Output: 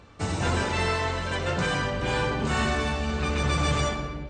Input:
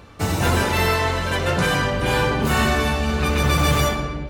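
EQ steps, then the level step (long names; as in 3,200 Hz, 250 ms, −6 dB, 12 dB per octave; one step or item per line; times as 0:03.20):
linear-phase brick-wall low-pass 8,900 Hz
−6.5 dB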